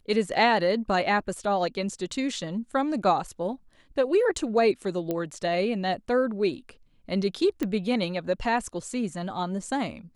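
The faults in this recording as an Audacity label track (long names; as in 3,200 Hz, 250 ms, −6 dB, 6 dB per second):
5.110000	5.110000	click −16 dBFS
7.630000	7.630000	click −15 dBFS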